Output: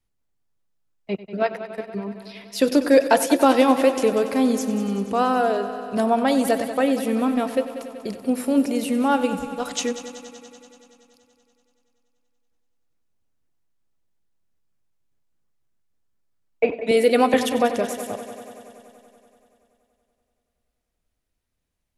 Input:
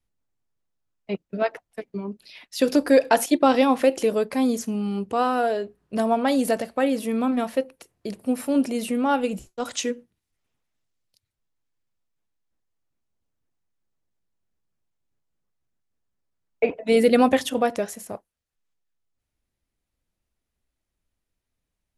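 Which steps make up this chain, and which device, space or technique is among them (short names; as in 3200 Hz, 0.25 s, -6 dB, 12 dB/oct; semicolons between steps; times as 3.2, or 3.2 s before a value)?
multi-head tape echo (multi-head echo 95 ms, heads first and second, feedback 71%, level -15.5 dB; wow and flutter 17 cents); 16.91–17.34 HPF 300 Hz 12 dB/oct; gain +1.5 dB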